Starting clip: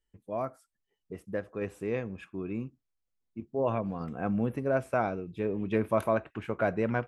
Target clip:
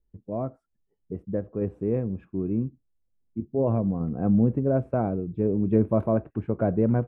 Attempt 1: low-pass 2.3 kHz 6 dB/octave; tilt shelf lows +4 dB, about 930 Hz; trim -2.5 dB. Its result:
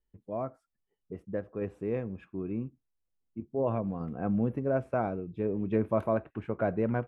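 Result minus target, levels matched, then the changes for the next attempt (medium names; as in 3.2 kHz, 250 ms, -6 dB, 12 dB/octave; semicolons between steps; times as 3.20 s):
1 kHz band +5.0 dB
change: tilt shelf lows +13.5 dB, about 930 Hz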